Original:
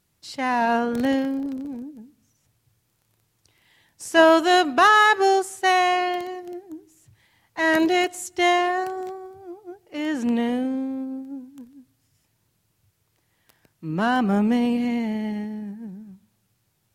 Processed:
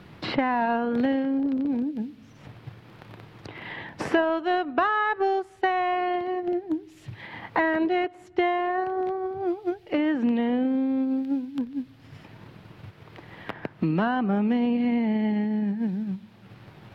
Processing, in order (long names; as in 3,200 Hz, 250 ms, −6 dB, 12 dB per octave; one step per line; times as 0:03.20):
transient designer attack +4 dB, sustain −3 dB
high-frequency loss of the air 380 metres
multiband upward and downward compressor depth 100%
level −2.5 dB